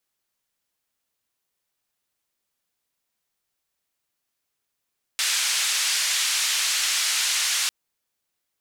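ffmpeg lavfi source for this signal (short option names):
-f lavfi -i "anoisesrc=c=white:d=2.5:r=44100:seed=1,highpass=f=1800,lowpass=f=7300,volume=-12.8dB"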